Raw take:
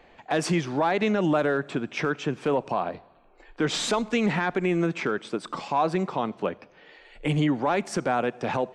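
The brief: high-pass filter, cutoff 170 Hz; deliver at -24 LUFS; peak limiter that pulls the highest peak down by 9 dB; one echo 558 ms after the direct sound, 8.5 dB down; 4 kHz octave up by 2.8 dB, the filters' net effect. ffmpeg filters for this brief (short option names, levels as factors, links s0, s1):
-af "highpass=170,equalizer=f=4000:t=o:g=3.5,alimiter=limit=0.0841:level=0:latency=1,aecho=1:1:558:0.376,volume=2.24"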